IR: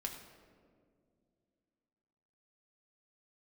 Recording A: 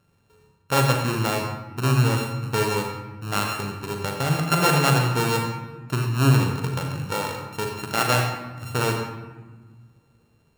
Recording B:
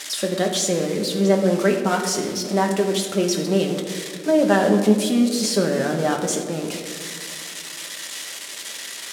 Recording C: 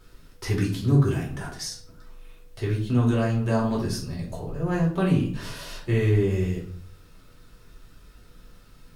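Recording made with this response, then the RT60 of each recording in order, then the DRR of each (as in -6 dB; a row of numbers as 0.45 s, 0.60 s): B; 1.4 s, 2.2 s, 0.55 s; 1.0 dB, 1.0 dB, -4.5 dB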